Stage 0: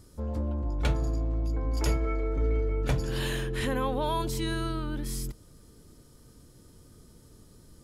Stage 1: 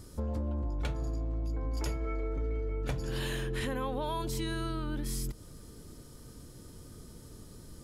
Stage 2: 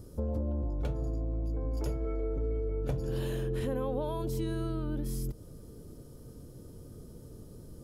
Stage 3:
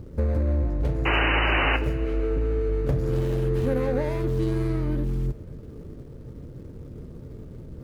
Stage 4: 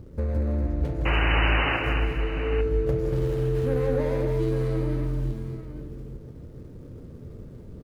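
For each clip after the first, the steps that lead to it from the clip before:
compression 5:1, threshold -36 dBFS, peak gain reduction 13.5 dB; trim +4.5 dB
graphic EQ 125/500/1000/2000/4000/8000 Hz +3/+5/-4/-9/-6/-7 dB
median filter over 41 samples; painted sound noise, 1.05–1.77 s, 280–3000 Hz -32 dBFS; two-slope reverb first 0.4 s, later 2.9 s, from -16 dB, DRR 9.5 dB; trim +8 dB
multi-tap echo 163/236/290/849 ms -8/-7/-9/-11 dB; trim -3.5 dB

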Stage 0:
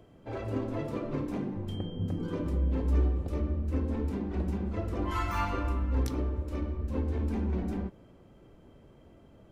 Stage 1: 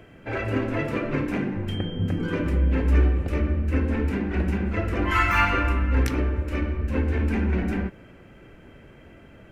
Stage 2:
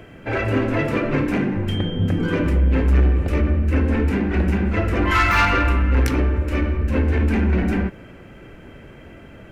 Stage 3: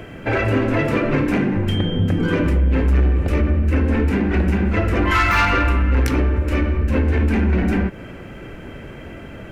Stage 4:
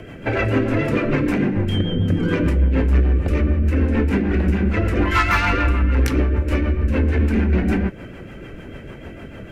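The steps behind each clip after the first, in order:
high-order bell 2 kHz +11 dB 1.2 oct; trim +7 dB
saturation -16.5 dBFS, distortion -17 dB; trim +6.5 dB
compression 2:1, threshold -25 dBFS, peak gain reduction 7 dB; trim +6.5 dB
rotary cabinet horn 6.7 Hz; trim +1 dB

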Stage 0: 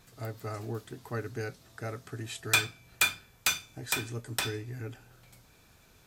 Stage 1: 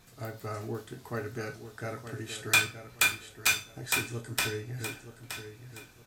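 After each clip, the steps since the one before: feedback delay 921 ms, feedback 29%, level -10 dB; on a send at -5 dB: reverberation RT60 0.25 s, pre-delay 14 ms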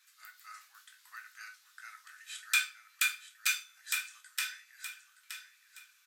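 steep high-pass 1.3 kHz 36 dB/octave; trim -4.5 dB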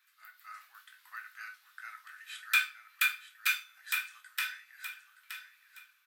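peaking EQ 6.9 kHz -13 dB 1.5 oct; level rider gain up to 5 dB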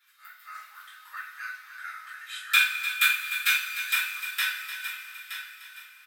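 delay 301 ms -11.5 dB; two-slope reverb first 0.3 s, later 3.7 s, from -18 dB, DRR -6.5 dB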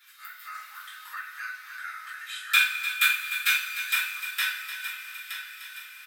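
tape noise reduction on one side only encoder only

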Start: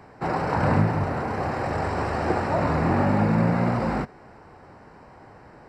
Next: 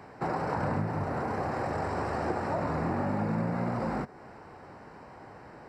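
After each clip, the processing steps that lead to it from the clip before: bass shelf 70 Hz -8.5 dB; compression 3:1, threshold -29 dBFS, peak gain reduction 9.5 dB; dynamic bell 3 kHz, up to -5 dB, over -56 dBFS, Q 1.1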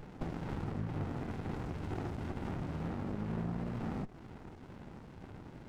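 compression, threshold -35 dBFS, peak gain reduction 9.5 dB; LFO notch saw down 2.1 Hz 380–4700 Hz; sliding maximum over 65 samples; trim +3 dB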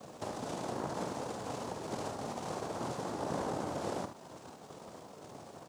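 noise-vocoded speech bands 2; added noise blue -77 dBFS; on a send: early reflections 47 ms -10 dB, 73 ms -10 dB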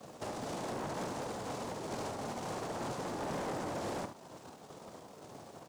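saturation -38 dBFS, distortion -10 dB; crackle 370 per s -52 dBFS; upward expansion 1.5:1, over -52 dBFS; trim +4.5 dB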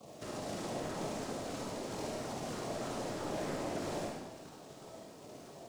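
LFO notch saw down 3.1 Hz 630–1800 Hz; algorithmic reverb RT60 1.1 s, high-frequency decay 0.95×, pre-delay 15 ms, DRR -2 dB; trim -2.5 dB

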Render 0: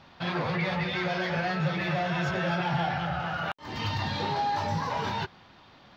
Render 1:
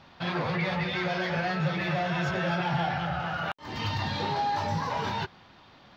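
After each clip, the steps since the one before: no audible change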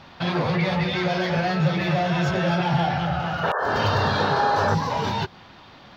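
painted sound noise, 3.43–4.75 s, 380–1800 Hz -29 dBFS; dynamic bell 1.7 kHz, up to -5 dB, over -41 dBFS, Q 0.76; trim +7.5 dB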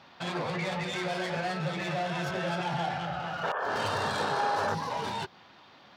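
tracing distortion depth 0.058 ms; high-pass 270 Hz 6 dB/octave; trim -7 dB

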